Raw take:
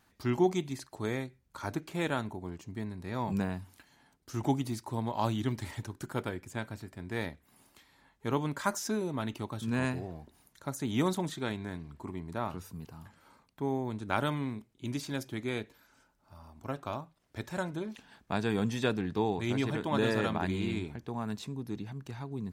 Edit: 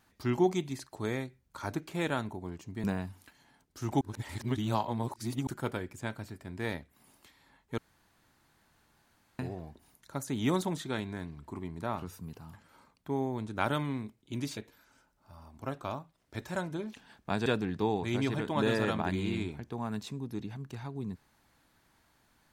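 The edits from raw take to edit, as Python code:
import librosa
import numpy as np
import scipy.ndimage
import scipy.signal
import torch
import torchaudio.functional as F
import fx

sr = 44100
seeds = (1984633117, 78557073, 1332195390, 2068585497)

y = fx.edit(x, sr, fx.cut(start_s=2.84, length_s=0.52),
    fx.reverse_span(start_s=4.53, length_s=1.46),
    fx.room_tone_fill(start_s=8.3, length_s=1.61),
    fx.cut(start_s=15.09, length_s=0.5),
    fx.cut(start_s=18.48, length_s=0.34), tone=tone)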